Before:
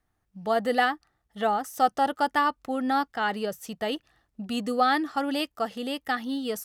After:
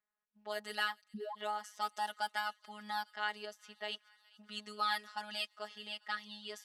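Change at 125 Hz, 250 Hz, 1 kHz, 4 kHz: can't be measured, −24.0 dB, −13.5 dB, −5.5 dB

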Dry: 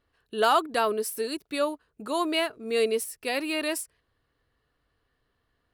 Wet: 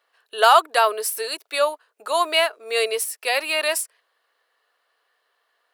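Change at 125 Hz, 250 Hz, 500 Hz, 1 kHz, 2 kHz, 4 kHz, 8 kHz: can't be measured, −11.5 dB, +4.5 dB, +8.5 dB, +8.5 dB, +8.5 dB, +8.5 dB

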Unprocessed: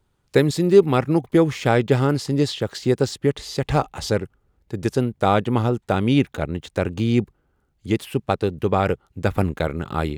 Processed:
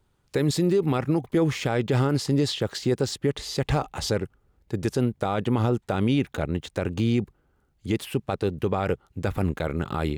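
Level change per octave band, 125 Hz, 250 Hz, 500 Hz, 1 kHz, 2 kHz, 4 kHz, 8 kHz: −3.0, −4.0, −6.0, −7.0, −5.0, −1.5, −0.5 decibels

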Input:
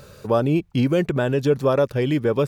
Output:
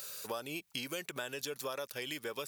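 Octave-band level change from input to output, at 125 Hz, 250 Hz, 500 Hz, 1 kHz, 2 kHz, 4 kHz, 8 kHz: −31.0 dB, −25.0 dB, −21.5 dB, −16.0 dB, −9.5 dB, −4.0 dB, can't be measured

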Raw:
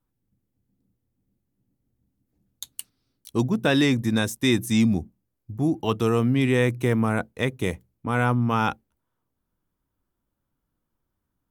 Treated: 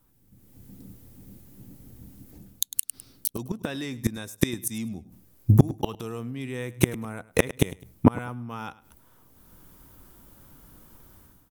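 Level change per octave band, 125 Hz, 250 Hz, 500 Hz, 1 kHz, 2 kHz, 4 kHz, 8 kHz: −1.0, −5.0, −5.5, −7.5, −7.5, −6.5, +5.0 decibels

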